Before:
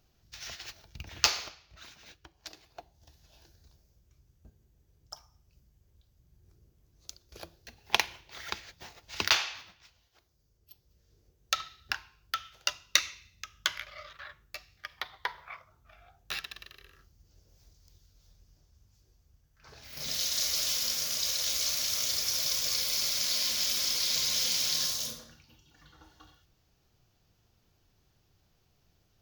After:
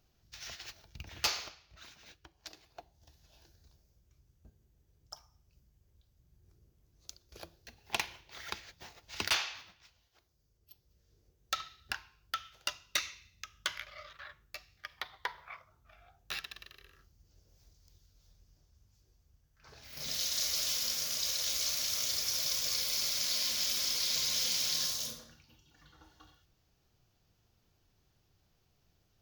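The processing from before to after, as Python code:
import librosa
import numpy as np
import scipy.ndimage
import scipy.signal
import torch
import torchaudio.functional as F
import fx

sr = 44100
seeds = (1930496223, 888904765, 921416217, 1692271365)

y = np.clip(10.0 ** (19.5 / 20.0) * x, -1.0, 1.0) / 10.0 ** (19.5 / 20.0)
y = F.gain(torch.from_numpy(y), -3.0).numpy()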